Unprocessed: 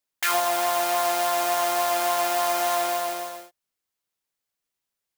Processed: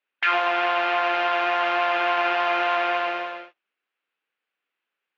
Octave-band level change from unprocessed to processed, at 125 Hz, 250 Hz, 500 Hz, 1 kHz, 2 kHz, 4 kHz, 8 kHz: no reading, +2.0 dB, 0.0 dB, +1.5 dB, +7.0 dB, 0.0 dB, under -25 dB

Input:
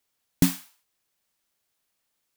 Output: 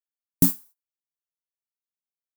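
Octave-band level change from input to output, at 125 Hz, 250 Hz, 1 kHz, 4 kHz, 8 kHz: 0.0 dB, -0.5 dB, -4.0 dB, -7.0 dB, +2.5 dB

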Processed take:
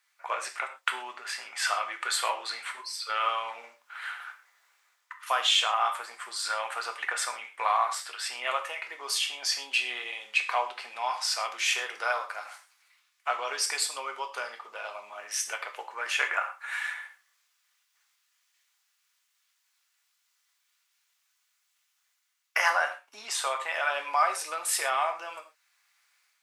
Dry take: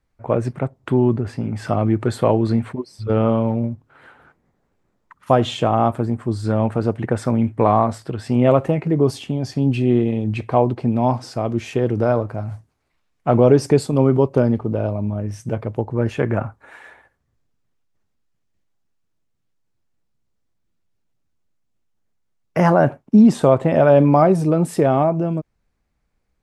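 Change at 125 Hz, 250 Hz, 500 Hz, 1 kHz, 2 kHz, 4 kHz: under -40 dB, under -40 dB, -21.0 dB, -6.0 dB, +4.5 dB, +7.5 dB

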